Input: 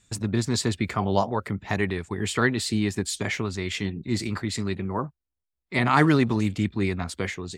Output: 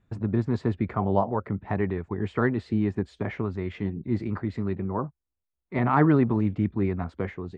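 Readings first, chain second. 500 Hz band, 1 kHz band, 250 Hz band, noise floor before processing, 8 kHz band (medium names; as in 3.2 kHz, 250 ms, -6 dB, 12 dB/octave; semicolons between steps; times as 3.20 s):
0.0 dB, -2.0 dB, 0.0 dB, -85 dBFS, under -30 dB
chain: low-pass 1.2 kHz 12 dB/octave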